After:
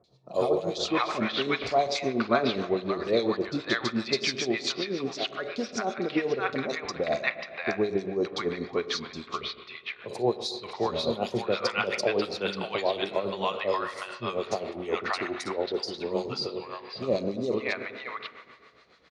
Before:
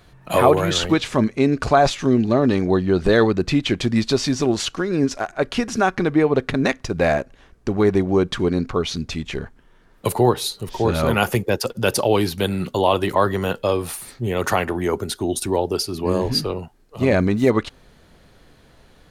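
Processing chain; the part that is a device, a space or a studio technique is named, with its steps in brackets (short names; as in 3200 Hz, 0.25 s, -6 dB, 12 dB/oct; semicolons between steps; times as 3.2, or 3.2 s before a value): tilt +3 dB/oct; combo amplifier with spring reverb and tremolo (spring tank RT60 1.9 s, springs 30/46 ms, chirp 50 ms, DRR 8.5 dB; tremolo 7.3 Hz, depth 74%; speaker cabinet 92–4500 Hz, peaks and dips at 96 Hz -8 dB, 160 Hz -6 dB, 280 Hz -6 dB, 890 Hz -6 dB, 1600 Hz -7 dB, 3000 Hz -8 dB); three bands offset in time lows, highs, mids 40/580 ms, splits 820/3800 Hz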